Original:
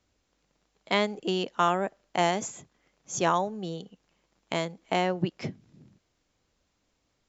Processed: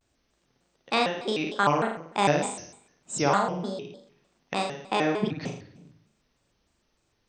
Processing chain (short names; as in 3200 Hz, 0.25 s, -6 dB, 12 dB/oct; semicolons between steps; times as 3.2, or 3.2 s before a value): flutter echo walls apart 8 m, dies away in 0.67 s; shaped vibrato square 3.3 Hz, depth 250 cents